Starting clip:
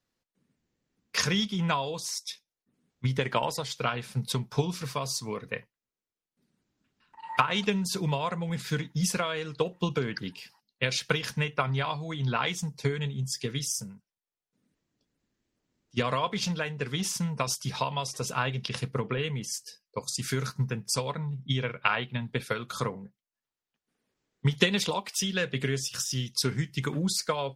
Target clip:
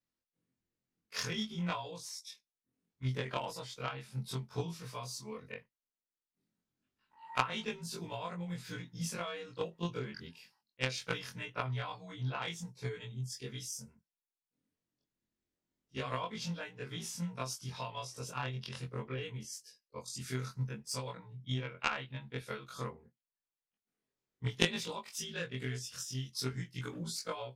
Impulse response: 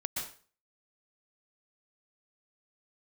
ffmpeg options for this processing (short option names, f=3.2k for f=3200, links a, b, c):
-af "afftfilt=real='re':imag='-im':win_size=2048:overlap=0.75,aeval=exprs='0.282*(cos(1*acos(clip(val(0)/0.282,-1,1)))-cos(1*PI/2))+0.0708*(cos(3*acos(clip(val(0)/0.282,-1,1)))-cos(3*PI/2))+0.00224*(cos(5*acos(clip(val(0)/0.282,-1,1)))-cos(5*PI/2))':c=same,volume=4dB"